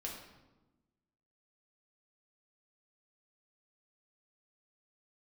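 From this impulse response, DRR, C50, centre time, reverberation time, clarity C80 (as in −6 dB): −2.5 dB, 3.5 dB, 44 ms, 1.1 s, 6.0 dB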